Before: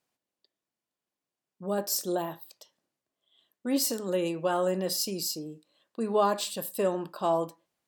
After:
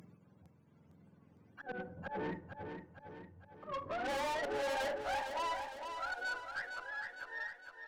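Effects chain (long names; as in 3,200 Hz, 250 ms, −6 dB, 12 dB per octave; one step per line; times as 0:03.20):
frequency axis turned over on the octave scale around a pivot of 550 Hz
low-shelf EQ 330 Hz +3.5 dB
harmonic and percussive parts rebalanced percussive −3 dB
high-shelf EQ 2,700 Hz +9 dB
volume swells 459 ms
upward compression, threshold −53 dBFS
high-pass filter sweep 180 Hz → 2,200 Hz, 0:03.18–0:07.03
tube saturation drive 42 dB, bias 0.2
repeating echo 457 ms, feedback 52%, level −7 dB
convolution reverb RT60 0.70 s, pre-delay 38 ms, DRR 19.5 dB
level +6.5 dB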